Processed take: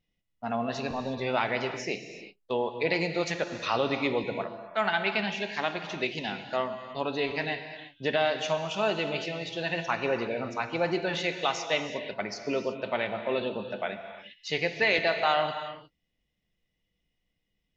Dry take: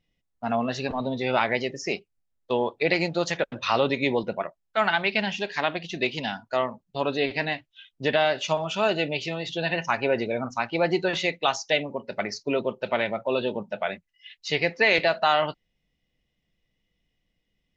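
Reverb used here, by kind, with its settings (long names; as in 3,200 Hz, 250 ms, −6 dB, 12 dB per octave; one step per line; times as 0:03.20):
reverb whose tail is shaped and stops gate 380 ms flat, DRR 7 dB
level −4.5 dB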